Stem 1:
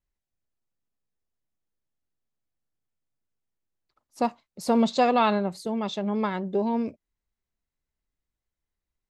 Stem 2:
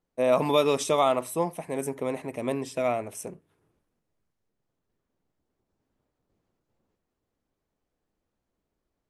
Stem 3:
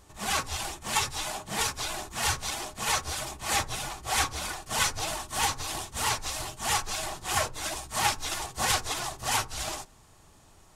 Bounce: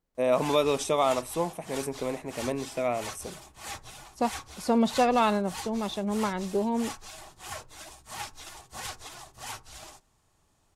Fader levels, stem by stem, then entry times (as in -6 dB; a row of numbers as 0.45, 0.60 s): -2.0, -2.0, -12.0 dB; 0.00, 0.00, 0.15 s